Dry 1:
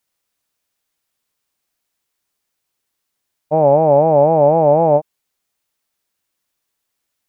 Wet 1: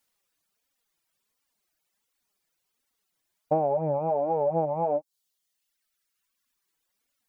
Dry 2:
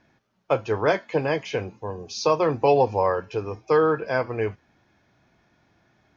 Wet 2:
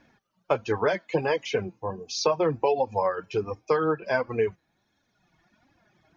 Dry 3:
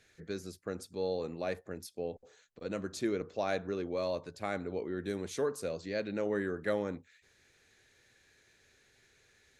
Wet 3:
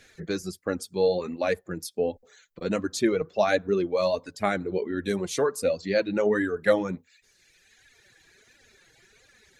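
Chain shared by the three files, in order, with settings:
flanger 1.4 Hz, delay 3.4 ms, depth 3.1 ms, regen +47%
downward compressor 6 to 1, threshold −25 dBFS
reverb reduction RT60 1.5 s
loudness normalisation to −27 LKFS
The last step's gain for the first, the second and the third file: +4.0, +6.0, +15.0 decibels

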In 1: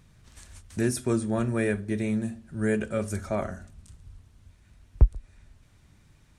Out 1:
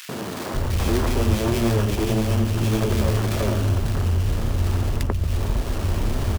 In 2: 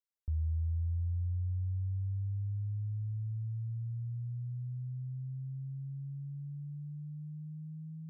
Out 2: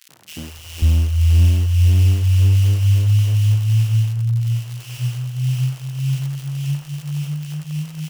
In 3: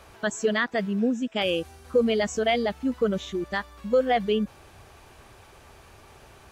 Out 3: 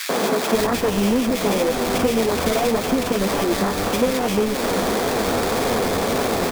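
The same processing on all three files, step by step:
compressor on every frequency bin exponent 0.4
parametric band 880 Hz −6 dB 2.7 octaves
mains-hum notches 60/120 Hz
downward compressor, threshold −27 dBFS
flanger 1.8 Hz, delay 6.8 ms, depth 5.4 ms, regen +22%
asymmetric clip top −33.5 dBFS
sample-rate reduction 2,900 Hz, jitter 20%
surface crackle 140 per second −48 dBFS
three-band delay without the direct sound highs, mids, lows 90/540 ms, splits 160/1,800 Hz
normalise the peak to −6 dBFS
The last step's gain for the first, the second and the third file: +16.0, +23.0, +16.5 decibels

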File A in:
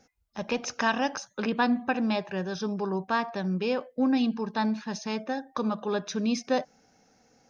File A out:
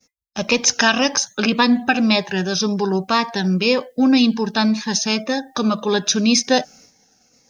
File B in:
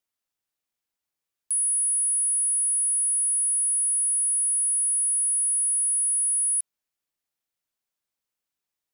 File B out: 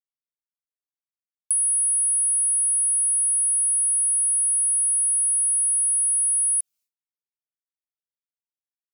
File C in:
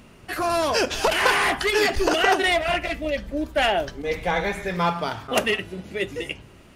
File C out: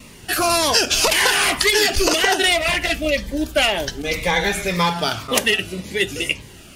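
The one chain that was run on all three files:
downward expander −55 dBFS
high-shelf EQ 2,300 Hz +11.5 dB
downward compressor, threshold −17 dBFS
phaser whose notches keep moving one way falling 1.9 Hz
loudness normalisation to −18 LKFS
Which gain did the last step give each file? +10.5, −3.0, +5.5 decibels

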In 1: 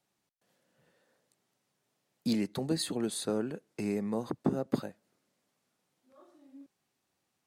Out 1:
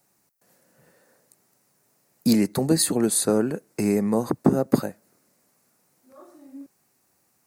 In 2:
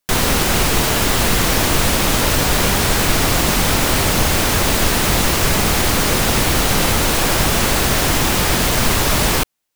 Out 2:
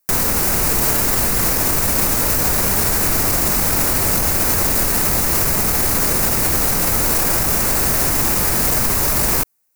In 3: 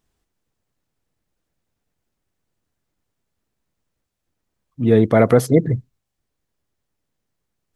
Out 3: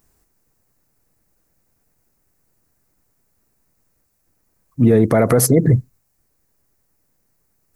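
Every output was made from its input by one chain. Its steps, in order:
parametric band 3,300 Hz −11 dB 0.58 octaves
brickwall limiter −13 dBFS
high-shelf EQ 9,000 Hz +12 dB
normalise the peak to −3 dBFS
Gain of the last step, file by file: +10.5, +1.5, +9.0 decibels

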